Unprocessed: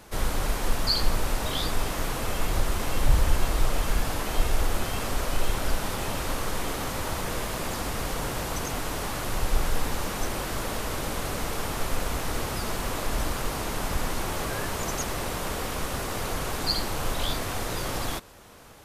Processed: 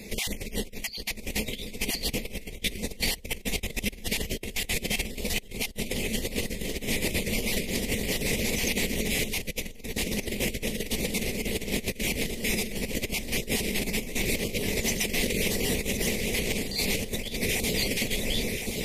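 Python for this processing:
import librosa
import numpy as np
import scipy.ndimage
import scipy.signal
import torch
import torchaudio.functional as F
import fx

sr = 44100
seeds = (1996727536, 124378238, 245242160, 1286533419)

y = fx.spec_dropout(x, sr, seeds[0], share_pct=21)
y = fx.curve_eq(y, sr, hz=(150.0, 210.0, 300.0, 430.0, 1400.0, 2400.0), db=(0, 12, 0, 7, -27, 3))
y = fx.echo_feedback(y, sr, ms=1066, feedback_pct=41, wet_db=-7)
y = fx.over_compress(y, sr, threshold_db=-30.0, ratio=-0.5)
y = fx.peak_eq(y, sr, hz=2000.0, db=13.5, octaves=0.5)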